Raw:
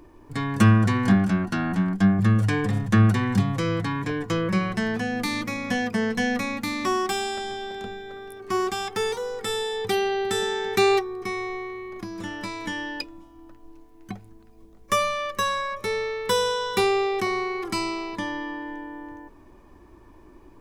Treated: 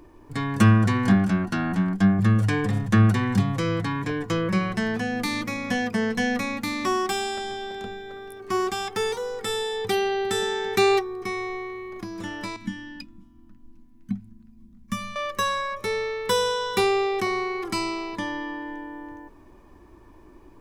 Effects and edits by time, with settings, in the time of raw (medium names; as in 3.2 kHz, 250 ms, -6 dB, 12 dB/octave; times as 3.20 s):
12.56–15.16 s: FFT filter 100 Hz 0 dB, 240 Hz +11 dB, 400 Hz -27 dB, 590 Hz -21 dB, 1.4 kHz -9 dB